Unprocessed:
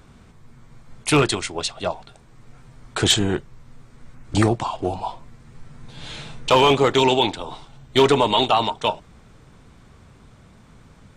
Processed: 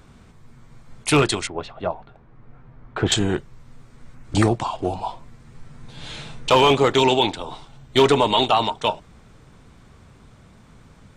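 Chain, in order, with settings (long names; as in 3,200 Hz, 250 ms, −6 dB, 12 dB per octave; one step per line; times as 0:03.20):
0:01.47–0:03.12: low-pass filter 1,700 Hz 12 dB per octave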